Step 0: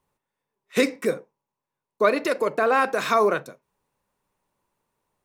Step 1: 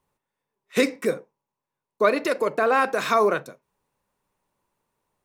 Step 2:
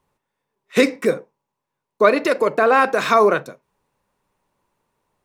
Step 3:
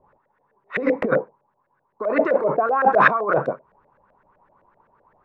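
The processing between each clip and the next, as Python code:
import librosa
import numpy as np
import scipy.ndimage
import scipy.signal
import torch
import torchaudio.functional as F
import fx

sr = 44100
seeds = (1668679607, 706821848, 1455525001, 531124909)

y1 = x
y2 = fx.high_shelf(y1, sr, hz=7200.0, db=-6.0)
y2 = y2 * 10.0 ** (5.5 / 20.0)
y3 = fx.over_compress(y2, sr, threshold_db=-24.0, ratio=-1.0)
y3 = fx.filter_lfo_lowpass(y3, sr, shape='saw_up', hz=7.8, low_hz=540.0, high_hz=1800.0, q=4.5)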